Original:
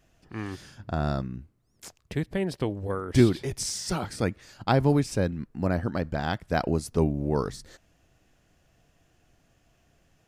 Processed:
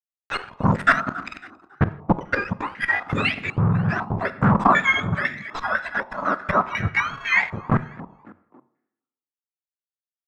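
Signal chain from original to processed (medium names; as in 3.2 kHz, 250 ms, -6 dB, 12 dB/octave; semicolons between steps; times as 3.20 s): spectrum inverted on a logarithmic axis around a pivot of 970 Hz; spectral noise reduction 23 dB; harmonic-percussive split percussive +4 dB; 1.01–2.21 s: FFT filter 160 Hz 0 dB, 270 Hz +5 dB, 750 Hz -16 dB; waveshaping leveller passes 3; in parallel at -3.5 dB: hard clipper -21.5 dBFS, distortion -7 dB; on the sum: inverted gate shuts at -14 dBFS, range -36 dB; fuzz box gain 47 dB, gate -53 dBFS; frequency-shifting echo 275 ms, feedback 44%, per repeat +42 Hz, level -19 dB; on a send at -14 dB: reverberation RT60 0.95 s, pre-delay 25 ms; on the sum: step-sequenced low-pass 4 Hz 940–2000 Hz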